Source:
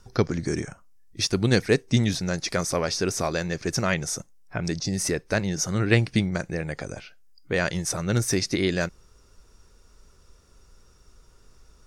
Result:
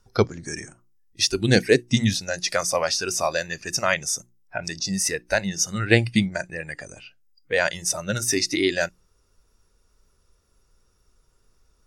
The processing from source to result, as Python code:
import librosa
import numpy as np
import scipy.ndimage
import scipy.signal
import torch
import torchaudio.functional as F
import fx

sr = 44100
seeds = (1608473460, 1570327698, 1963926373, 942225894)

y = fx.hum_notches(x, sr, base_hz=60, count=6)
y = fx.noise_reduce_blind(y, sr, reduce_db=13)
y = y * librosa.db_to_amplitude(4.5)